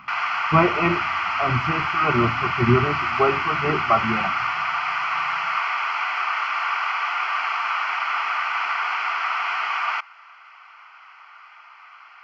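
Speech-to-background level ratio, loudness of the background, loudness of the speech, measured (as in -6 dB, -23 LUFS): 0.5 dB, -23.5 LUFS, -23.0 LUFS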